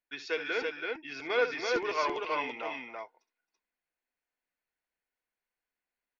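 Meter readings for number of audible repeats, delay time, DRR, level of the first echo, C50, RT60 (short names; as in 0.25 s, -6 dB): 3, 65 ms, none, -12.0 dB, none, none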